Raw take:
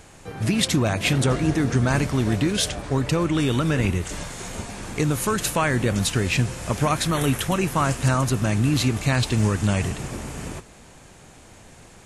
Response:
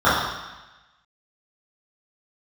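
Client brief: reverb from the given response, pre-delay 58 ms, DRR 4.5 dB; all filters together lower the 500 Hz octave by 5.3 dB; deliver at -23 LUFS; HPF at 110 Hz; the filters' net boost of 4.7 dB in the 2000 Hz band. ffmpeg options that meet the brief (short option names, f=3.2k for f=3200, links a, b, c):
-filter_complex "[0:a]highpass=110,equalizer=f=500:t=o:g=-7.5,equalizer=f=2k:t=o:g=6.5,asplit=2[a][b];[1:a]atrim=start_sample=2205,adelay=58[c];[b][c]afir=irnorm=-1:irlink=0,volume=-30dB[d];[a][d]amix=inputs=2:normalize=0,volume=-1dB"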